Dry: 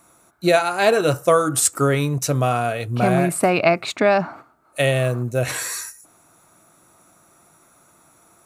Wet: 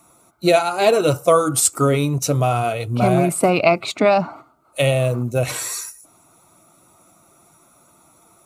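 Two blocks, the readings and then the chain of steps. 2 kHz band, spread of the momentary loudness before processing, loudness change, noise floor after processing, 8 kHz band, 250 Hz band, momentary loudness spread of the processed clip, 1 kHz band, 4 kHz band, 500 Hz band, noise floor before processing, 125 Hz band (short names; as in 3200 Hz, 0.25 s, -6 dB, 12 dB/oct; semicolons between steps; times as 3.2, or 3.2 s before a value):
-2.0 dB, 8 LU, +1.5 dB, -55 dBFS, +1.5 dB, +1.5 dB, 8 LU, +1.5 dB, +1.5 dB, +1.5 dB, -56 dBFS, +1.5 dB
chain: bin magnitudes rounded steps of 15 dB; bell 1700 Hz -14.5 dB 0.24 oct; gain +2 dB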